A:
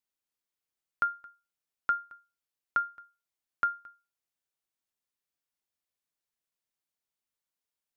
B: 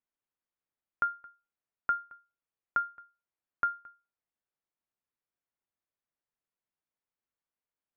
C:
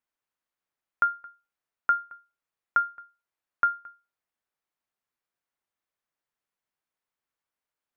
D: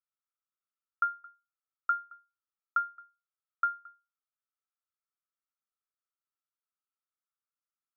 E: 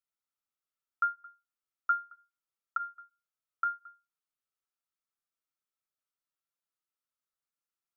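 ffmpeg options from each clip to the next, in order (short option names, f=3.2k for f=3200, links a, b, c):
-af "lowpass=1.9k"
-af "equalizer=f=1.4k:t=o:w=2.8:g=6"
-af "bandpass=f=1.3k:t=q:w=11:csg=0"
-af "flanger=delay=5.8:depth=2.1:regen=-22:speed=0.76:shape=sinusoidal,volume=2.5dB"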